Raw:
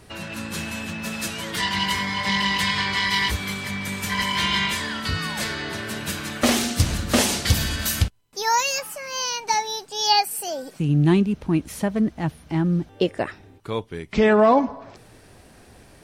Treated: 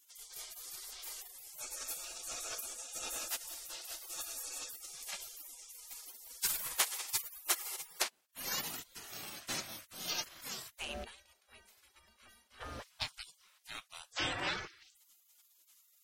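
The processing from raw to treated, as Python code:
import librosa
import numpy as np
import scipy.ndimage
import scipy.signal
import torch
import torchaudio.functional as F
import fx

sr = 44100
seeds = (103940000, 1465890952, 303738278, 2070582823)

y = fx.low_shelf(x, sr, hz=130.0, db=-2.5)
y = fx.stiff_resonator(y, sr, f0_hz=140.0, decay_s=0.51, stiffness=0.03, at=(11.03, 12.6), fade=0.02)
y = fx.spec_gate(y, sr, threshold_db=-30, keep='weak')
y = y * librosa.db_to_amplitude(3.5)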